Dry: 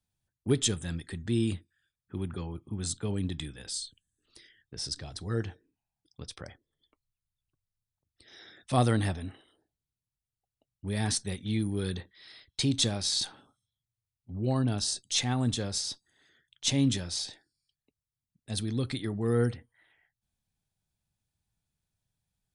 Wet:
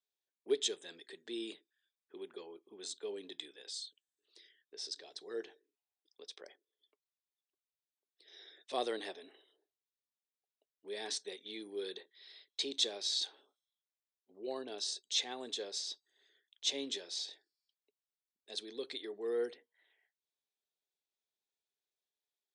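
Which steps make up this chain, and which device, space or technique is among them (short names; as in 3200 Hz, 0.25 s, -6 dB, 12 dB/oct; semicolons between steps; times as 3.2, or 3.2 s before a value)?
phone speaker on a table (speaker cabinet 380–7500 Hz, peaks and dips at 410 Hz +8 dB, 840 Hz -3 dB, 1300 Hz -8 dB, 3700 Hz +6 dB); gain -7.5 dB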